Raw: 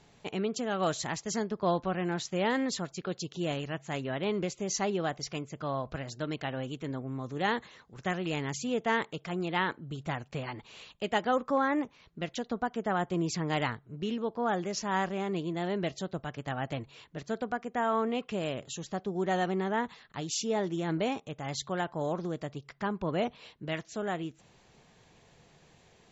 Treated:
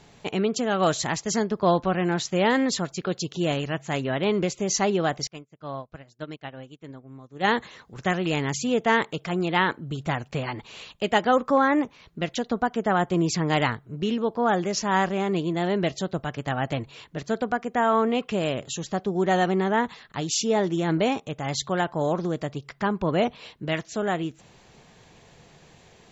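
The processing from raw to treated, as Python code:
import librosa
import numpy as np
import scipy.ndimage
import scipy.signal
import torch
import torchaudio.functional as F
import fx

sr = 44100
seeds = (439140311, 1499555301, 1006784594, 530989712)

y = fx.upward_expand(x, sr, threshold_db=-48.0, expansion=2.5, at=(5.27, 7.47))
y = y * librosa.db_to_amplitude(7.5)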